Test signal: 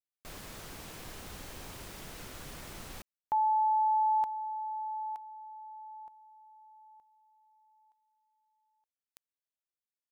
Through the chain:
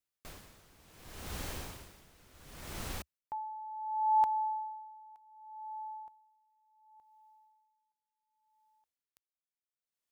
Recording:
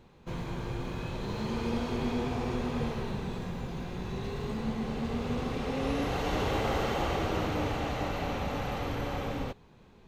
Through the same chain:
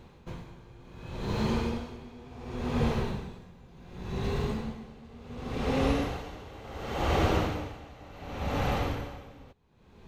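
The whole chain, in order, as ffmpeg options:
-af "equalizer=f=71:w=1.7:g=5,aeval=exprs='val(0)*pow(10,-22*(0.5-0.5*cos(2*PI*0.69*n/s))/20)':c=same,volume=1.78"

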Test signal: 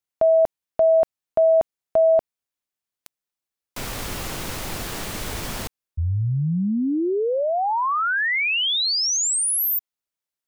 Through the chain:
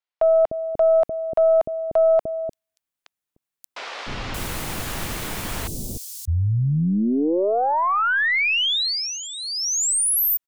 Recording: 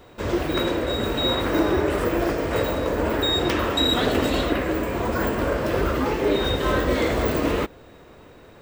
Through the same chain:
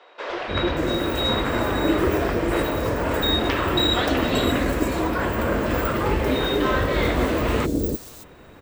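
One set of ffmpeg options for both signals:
-filter_complex "[0:a]acrossover=split=470|5100[s0][s1][s2];[s0]adelay=300[s3];[s2]adelay=580[s4];[s3][s1][s4]amix=inputs=3:normalize=0,aeval=exprs='0.316*(cos(1*acos(clip(val(0)/0.316,-1,1)))-cos(1*PI/2))+0.0251*(cos(2*acos(clip(val(0)/0.316,-1,1)))-cos(2*PI/2))':c=same,volume=1.26"

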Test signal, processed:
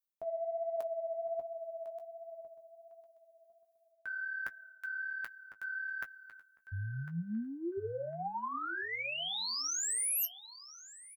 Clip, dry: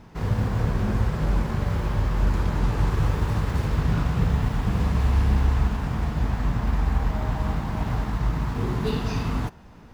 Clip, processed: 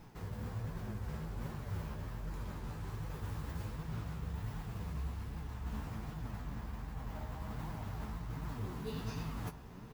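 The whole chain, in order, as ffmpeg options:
-filter_complex "[0:a]areverse,acompressor=threshold=0.0316:ratio=16,areverse,aemphasis=mode=production:type=75fm,asoftclip=type=tanh:threshold=0.178,asplit=2[s0][s1];[s1]adelay=18,volume=0.316[s2];[s0][s2]amix=inputs=2:normalize=0,asplit=2[s3][s4];[s4]adelay=1053,lowpass=f=3900:p=1,volume=0.251,asplit=2[s5][s6];[s6]adelay=1053,lowpass=f=3900:p=1,volume=0.17[s7];[s5][s7]amix=inputs=2:normalize=0[s8];[s3][s8]amix=inputs=2:normalize=0,flanger=delay=5.5:depth=9:regen=34:speed=1.3:shape=triangular,highshelf=f=3100:g=-8,volume=0.75"

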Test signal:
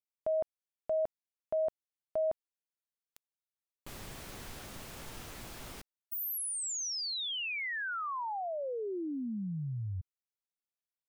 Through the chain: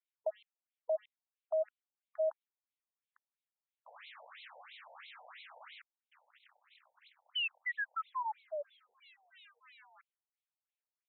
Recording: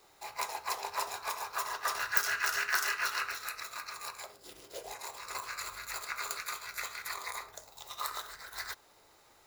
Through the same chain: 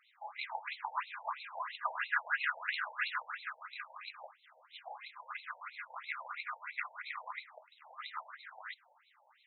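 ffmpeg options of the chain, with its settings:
-af "acrusher=bits=4:mode=log:mix=0:aa=0.000001,equalizer=f=380:w=1:g=-7,afftfilt=real='re*between(b*sr/1024,650*pow(3000/650,0.5+0.5*sin(2*PI*3*pts/sr))/1.41,650*pow(3000/650,0.5+0.5*sin(2*PI*3*pts/sr))*1.41)':imag='im*between(b*sr/1024,650*pow(3000/650,0.5+0.5*sin(2*PI*3*pts/sr))/1.41,650*pow(3000/650,0.5+0.5*sin(2*PI*3*pts/sr))*1.41)':win_size=1024:overlap=0.75,volume=1.41"

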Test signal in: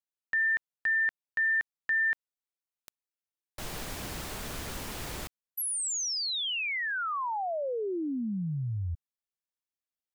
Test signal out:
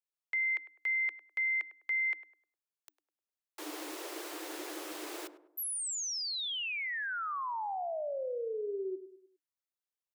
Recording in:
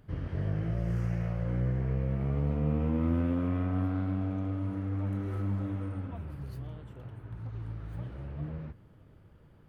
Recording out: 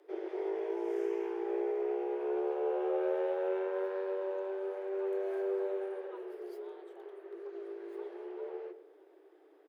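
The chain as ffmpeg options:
-filter_complex "[0:a]asplit=2[s0][s1];[s1]adelay=102,lowpass=f=1000:p=1,volume=0.251,asplit=2[s2][s3];[s3]adelay=102,lowpass=f=1000:p=1,volume=0.43,asplit=2[s4][s5];[s5]adelay=102,lowpass=f=1000:p=1,volume=0.43,asplit=2[s6][s7];[s7]adelay=102,lowpass=f=1000:p=1,volume=0.43[s8];[s0][s2][s4][s6][s8]amix=inputs=5:normalize=0,afreqshift=290,volume=0.596"

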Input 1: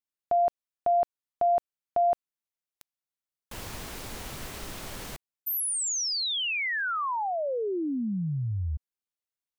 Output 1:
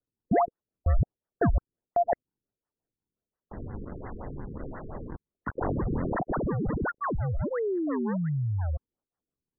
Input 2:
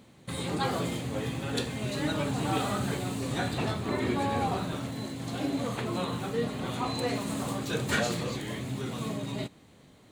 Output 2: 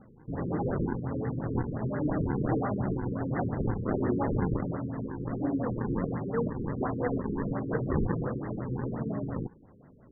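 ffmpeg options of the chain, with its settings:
-af "acrusher=samples=40:mix=1:aa=0.000001:lfo=1:lforange=64:lforate=1.4,afftfilt=real='re*lt(b*sr/1024,470*pow(2100/470,0.5+0.5*sin(2*PI*5.7*pts/sr)))':imag='im*lt(b*sr/1024,470*pow(2100/470,0.5+0.5*sin(2*PI*5.7*pts/sr)))':win_size=1024:overlap=0.75,volume=1.19"

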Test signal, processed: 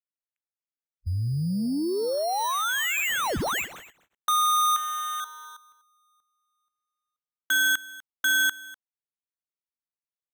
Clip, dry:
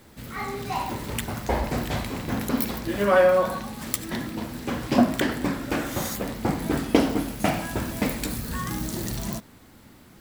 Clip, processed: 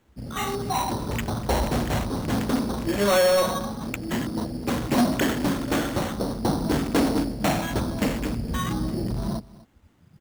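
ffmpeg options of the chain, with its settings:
-af "afwtdn=0.0158,aresample=16000,asoftclip=type=tanh:threshold=0.0944,aresample=44100,acrusher=samples=9:mix=1:aa=0.000001,aecho=1:1:247:0.1,volume=1.68"

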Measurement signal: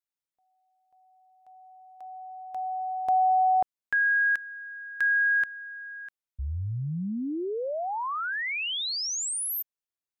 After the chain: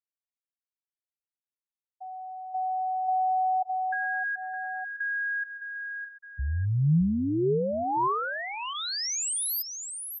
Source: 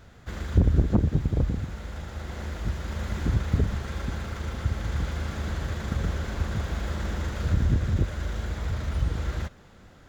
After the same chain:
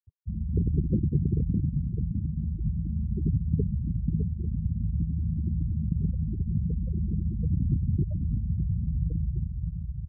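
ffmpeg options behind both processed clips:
-af "bandreject=f=3200:w=17,aecho=1:1:610|1220|1830|2440:0.335|0.127|0.0484|0.0184,acrusher=bits=7:mix=0:aa=0.000001,acompressor=threshold=0.0316:ratio=4:attack=8.3:release=94:knee=6:detection=rms,highpass=46,bass=f=250:g=5,treble=f=4000:g=4,afftfilt=real='re*gte(hypot(re,im),0.0631)':imag='im*gte(hypot(re,im),0.0631)':win_size=1024:overlap=0.75,equalizer=f=160:t=o:w=0.67:g=8,equalizer=f=400:t=o:w=0.67:g=8,equalizer=f=1000:t=o:w=0.67:g=9,equalizer=f=2500:t=o:w=0.67:g=-7"

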